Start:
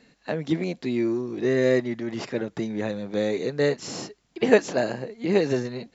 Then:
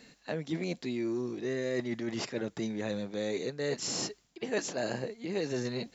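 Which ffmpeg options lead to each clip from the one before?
ffmpeg -i in.wav -af "highshelf=frequency=4100:gain=9.5,areverse,acompressor=threshold=-31dB:ratio=5,areverse" out.wav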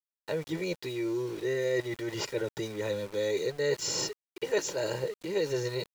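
ffmpeg -i in.wav -af "aecho=1:1:2.1:0.91,aeval=exprs='val(0)*gte(abs(val(0)),0.00668)':channel_layout=same" out.wav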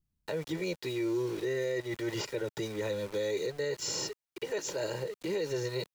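ffmpeg -i in.wav -filter_complex "[0:a]acrossover=split=170|1300[link_01][link_02][link_03];[link_01]acompressor=mode=upward:threshold=-55dB:ratio=2.5[link_04];[link_04][link_02][link_03]amix=inputs=3:normalize=0,alimiter=level_in=2dB:limit=-24dB:level=0:latency=1:release=201,volume=-2dB,volume=1.5dB" out.wav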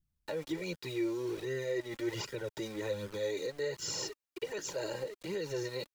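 ffmpeg -i in.wav -af "flanger=delay=0.6:depth=3.2:regen=28:speed=1.3:shape=sinusoidal,volume=1dB" out.wav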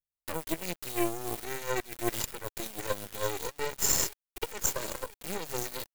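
ffmpeg -i in.wav -af "aexciter=amount=3.5:drive=9.6:freq=7300,aeval=exprs='0.106*(cos(1*acos(clip(val(0)/0.106,-1,1)))-cos(1*PI/2))+0.015*(cos(3*acos(clip(val(0)/0.106,-1,1)))-cos(3*PI/2))+0.0188*(cos(4*acos(clip(val(0)/0.106,-1,1)))-cos(4*PI/2))+0.00841*(cos(7*acos(clip(val(0)/0.106,-1,1)))-cos(7*PI/2))':channel_layout=same,volume=8dB" out.wav

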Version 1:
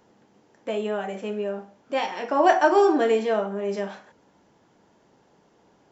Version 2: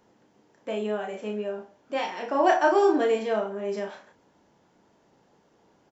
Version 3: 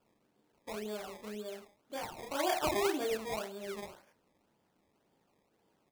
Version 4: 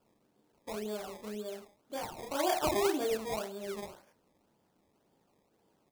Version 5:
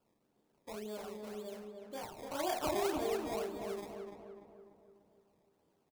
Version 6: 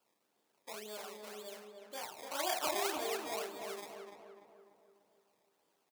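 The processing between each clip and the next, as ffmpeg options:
ffmpeg -i in.wav -filter_complex "[0:a]asplit=2[link_01][link_02];[link_02]adelay=33,volume=-6dB[link_03];[link_01][link_03]amix=inputs=2:normalize=0,volume=-3.5dB" out.wav
ffmpeg -i in.wav -af "flanger=delay=8.4:depth=5.8:regen=-72:speed=1.1:shape=triangular,acrusher=samples=21:mix=1:aa=0.000001:lfo=1:lforange=21:lforate=1.9,volume=-7dB" out.wav
ffmpeg -i in.wav -af "equalizer=frequency=2100:width=0.84:gain=-4,volume=2.5dB" out.wav
ffmpeg -i in.wav -filter_complex "[0:a]asplit=2[link_01][link_02];[link_02]adelay=295,lowpass=frequency=1800:poles=1,volume=-4dB,asplit=2[link_03][link_04];[link_04]adelay=295,lowpass=frequency=1800:poles=1,volume=0.53,asplit=2[link_05][link_06];[link_06]adelay=295,lowpass=frequency=1800:poles=1,volume=0.53,asplit=2[link_07][link_08];[link_08]adelay=295,lowpass=frequency=1800:poles=1,volume=0.53,asplit=2[link_09][link_10];[link_10]adelay=295,lowpass=frequency=1800:poles=1,volume=0.53,asplit=2[link_11][link_12];[link_12]adelay=295,lowpass=frequency=1800:poles=1,volume=0.53,asplit=2[link_13][link_14];[link_14]adelay=295,lowpass=frequency=1800:poles=1,volume=0.53[link_15];[link_01][link_03][link_05][link_07][link_09][link_11][link_13][link_15]amix=inputs=8:normalize=0,volume=-5.5dB" out.wav
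ffmpeg -i in.wav -af "highpass=frequency=1300:poles=1,volume=5.5dB" out.wav

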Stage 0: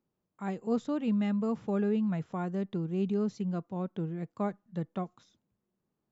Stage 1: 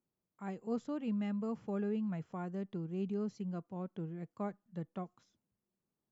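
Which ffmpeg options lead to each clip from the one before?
ffmpeg -i in.wav -af "bandreject=frequency=3700:width=9.5,volume=-7dB" out.wav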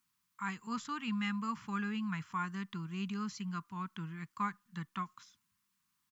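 ffmpeg -i in.wav -af "firequalizer=gain_entry='entry(200,0);entry(580,-24);entry(1000,14)':delay=0.05:min_phase=1" out.wav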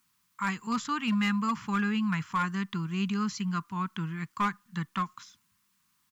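ffmpeg -i in.wav -af "volume=30.5dB,asoftclip=hard,volume=-30.5dB,volume=8.5dB" out.wav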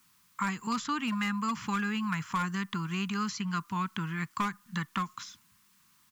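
ffmpeg -i in.wav -filter_complex "[0:a]acrossover=split=730|1800|6500[link_01][link_02][link_03][link_04];[link_01]acompressor=threshold=-41dB:ratio=4[link_05];[link_02]acompressor=threshold=-43dB:ratio=4[link_06];[link_03]acompressor=threshold=-48dB:ratio=4[link_07];[link_04]acompressor=threshold=-57dB:ratio=4[link_08];[link_05][link_06][link_07][link_08]amix=inputs=4:normalize=0,volume=7dB" out.wav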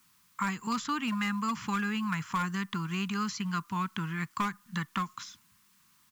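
ffmpeg -i in.wav -af "acrusher=bits=8:mode=log:mix=0:aa=0.000001" out.wav

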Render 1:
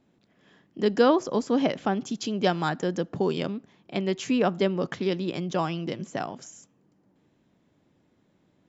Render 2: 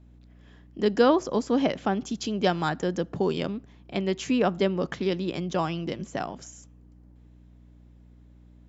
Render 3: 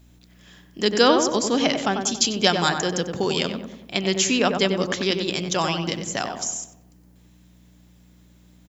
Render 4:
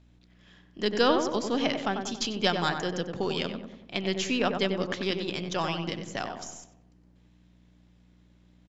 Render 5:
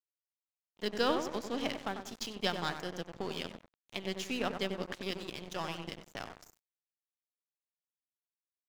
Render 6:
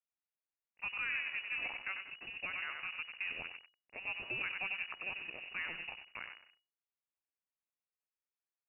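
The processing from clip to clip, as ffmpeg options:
ffmpeg -i in.wav -af "aeval=exprs='val(0)+0.00282*(sin(2*PI*60*n/s)+sin(2*PI*2*60*n/s)/2+sin(2*PI*3*60*n/s)/3+sin(2*PI*4*60*n/s)/4+sin(2*PI*5*60*n/s)/5)':channel_layout=same" out.wav
ffmpeg -i in.wav -filter_complex "[0:a]crystalizer=i=8.5:c=0,asplit=2[link_01][link_02];[link_02]adelay=94,lowpass=frequency=1500:poles=1,volume=-5dB,asplit=2[link_03][link_04];[link_04]adelay=94,lowpass=frequency=1500:poles=1,volume=0.54,asplit=2[link_05][link_06];[link_06]adelay=94,lowpass=frequency=1500:poles=1,volume=0.54,asplit=2[link_07][link_08];[link_08]adelay=94,lowpass=frequency=1500:poles=1,volume=0.54,asplit=2[link_09][link_10];[link_10]adelay=94,lowpass=frequency=1500:poles=1,volume=0.54,asplit=2[link_11][link_12];[link_12]adelay=94,lowpass=frequency=1500:poles=1,volume=0.54,asplit=2[link_13][link_14];[link_14]adelay=94,lowpass=frequency=1500:poles=1,volume=0.54[link_15];[link_03][link_05][link_07][link_09][link_11][link_13][link_15]amix=inputs=7:normalize=0[link_16];[link_01][link_16]amix=inputs=2:normalize=0" out.wav
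ffmpeg -i in.wav -af "aeval=exprs='if(lt(val(0),0),0.708*val(0),val(0))':channel_layout=same,lowpass=4300,volume=-5dB" out.wav
ffmpeg -i in.wav -af "aeval=exprs='sgn(val(0))*max(abs(val(0))-0.015,0)':channel_layout=same,volume=-6dB" out.wav
ffmpeg -i in.wav -af "alimiter=level_in=0.5dB:limit=-24dB:level=0:latency=1:release=54,volume=-0.5dB,lowpass=frequency=2500:width_type=q:width=0.5098,lowpass=frequency=2500:width_type=q:width=0.6013,lowpass=frequency=2500:width_type=q:width=0.9,lowpass=frequency=2500:width_type=q:width=2.563,afreqshift=-2900,volume=-2dB" out.wav

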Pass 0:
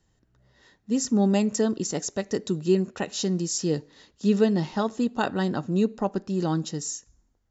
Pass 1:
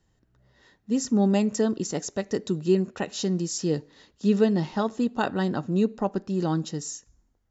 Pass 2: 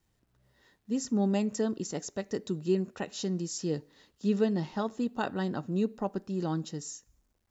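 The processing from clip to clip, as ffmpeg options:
ffmpeg -i in.wav -af "highshelf=frequency=5400:gain=-5" out.wav
ffmpeg -i in.wav -af "acrusher=bits=11:mix=0:aa=0.000001,volume=-6dB" out.wav

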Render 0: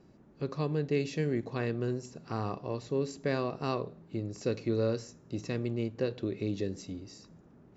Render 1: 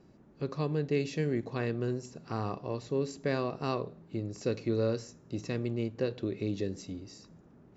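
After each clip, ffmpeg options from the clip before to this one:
ffmpeg -i in.wav -af anull out.wav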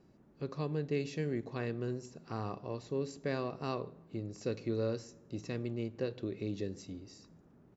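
ffmpeg -i in.wav -filter_complex "[0:a]asplit=2[link_01][link_02];[link_02]adelay=147,lowpass=frequency=1400:poles=1,volume=-23dB,asplit=2[link_03][link_04];[link_04]adelay=147,lowpass=frequency=1400:poles=1,volume=0.51,asplit=2[link_05][link_06];[link_06]adelay=147,lowpass=frequency=1400:poles=1,volume=0.51[link_07];[link_01][link_03][link_05][link_07]amix=inputs=4:normalize=0,volume=-4.5dB" out.wav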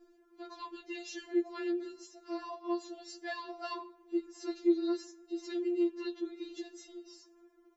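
ffmpeg -i in.wav -af "afftfilt=real='re*4*eq(mod(b,16),0)':imag='im*4*eq(mod(b,16),0)':win_size=2048:overlap=0.75,volume=4.5dB" out.wav

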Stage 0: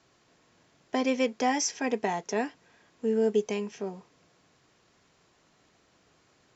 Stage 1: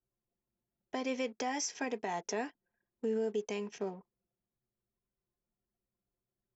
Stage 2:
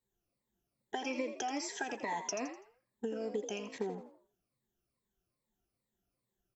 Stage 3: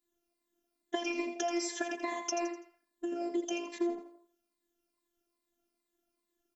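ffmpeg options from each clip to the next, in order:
ffmpeg -i in.wav -af "anlmdn=0.00631,lowshelf=frequency=200:gain=-6.5,alimiter=level_in=1.5dB:limit=-24dB:level=0:latency=1:release=269,volume=-1.5dB" out.wav
ffmpeg -i in.wav -filter_complex "[0:a]afftfilt=real='re*pow(10,16/40*sin(2*PI*(0.98*log(max(b,1)*sr/1024/100)/log(2)-(-2.4)*(pts-256)/sr)))':imag='im*pow(10,16/40*sin(2*PI*(0.98*log(max(b,1)*sr/1024/100)/log(2)-(-2.4)*(pts-256)/sr)))':win_size=1024:overlap=0.75,acompressor=threshold=-35dB:ratio=6,asplit=2[link_01][link_02];[link_02]asplit=4[link_03][link_04][link_05][link_06];[link_03]adelay=83,afreqshift=58,volume=-9.5dB[link_07];[link_04]adelay=166,afreqshift=116,volume=-18.6dB[link_08];[link_05]adelay=249,afreqshift=174,volume=-27.7dB[link_09];[link_06]adelay=332,afreqshift=232,volume=-36.9dB[link_10];[link_07][link_08][link_09][link_10]amix=inputs=4:normalize=0[link_11];[link_01][link_11]amix=inputs=2:normalize=0,volume=1dB" out.wav
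ffmpeg -i in.wav -af "afftfilt=real='hypot(re,im)*cos(PI*b)':imag='0':win_size=512:overlap=0.75,asuperstop=centerf=870:order=4:qfactor=5.7,lowshelf=frequency=160:width_type=q:width=3:gain=-7.5,volume=6.5dB" out.wav

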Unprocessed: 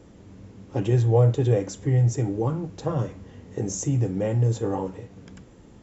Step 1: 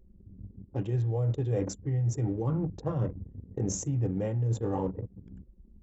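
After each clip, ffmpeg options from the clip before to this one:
ffmpeg -i in.wav -af "anlmdn=2.51,lowshelf=frequency=150:gain=7,areverse,acompressor=threshold=-26dB:ratio=8,areverse" out.wav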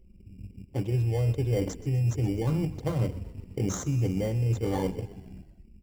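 ffmpeg -i in.wav -filter_complex "[0:a]asplit=2[link_01][link_02];[link_02]acrusher=samples=17:mix=1:aa=0.000001,volume=-4dB[link_03];[link_01][link_03]amix=inputs=2:normalize=0,asplit=7[link_04][link_05][link_06][link_07][link_08][link_09][link_10];[link_05]adelay=126,afreqshift=-33,volume=-17dB[link_11];[link_06]adelay=252,afreqshift=-66,volume=-21.3dB[link_12];[link_07]adelay=378,afreqshift=-99,volume=-25.6dB[link_13];[link_08]adelay=504,afreqshift=-132,volume=-29.9dB[link_14];[link_09]adelay=630,afreqshift=-165,volume=-34.2dB[link_15];[link_10]adelay=756,afreqshift=-198,volume=-38.5dB[link_16];[link_04][link_11][link_12][link_13][link_14][link_15][link_16]amix=inputs=7:normalize=0,volume=-2dB" out.wav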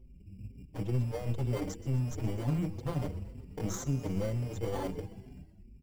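ffmpeg -i in.wav -filter_complex "[0:a]aeval=exprs='clip(val(0),-1,0.0188)':channel_layout=same,aeval=exprs='val(0)+0.00178*(sin(2*PI*50*n/s)+sin(2*PI*2*50*n/s)/2+sin(2*PI*3*50*n/s)/3+sin(2*PI*4*50*n/s)/4+sin(2*PI*5*50*n/s)/5)':channel_layout=same,asplit=2[link_01][link_02];[link_02]adelay=5.5,afreqshift=2.1[link_03];[link_01][link_03]amix=inputs=2:normalize=1" out.wav

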